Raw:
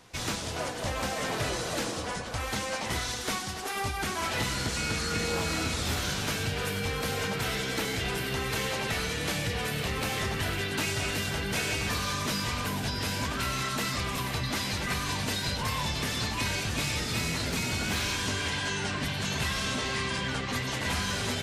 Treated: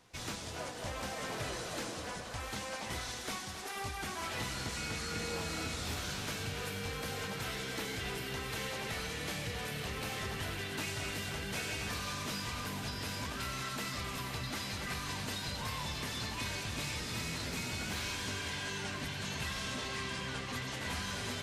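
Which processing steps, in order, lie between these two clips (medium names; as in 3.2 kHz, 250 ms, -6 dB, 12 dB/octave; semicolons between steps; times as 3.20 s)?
thinning echo 264 ms, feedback 78%, level -10.5 dB; trim -8.5 dB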